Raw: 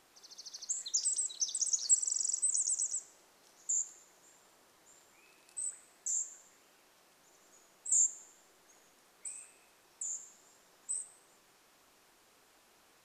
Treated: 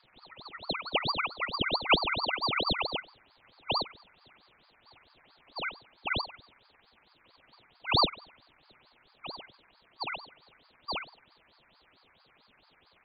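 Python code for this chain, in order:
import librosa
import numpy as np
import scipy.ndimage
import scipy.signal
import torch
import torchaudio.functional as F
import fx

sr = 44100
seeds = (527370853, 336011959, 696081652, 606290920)

y = fx.freq_compress(x, sr, knee_hz=1100.0, ratio=4.0)
y = fx.brickwall_highpass(y, sr, low_hz=370.0, at=(0.93, 1.63))
y = fx.ring_lfo(y, sr, carrier_hz=1600.0, swing_pct=85, hz=4.5)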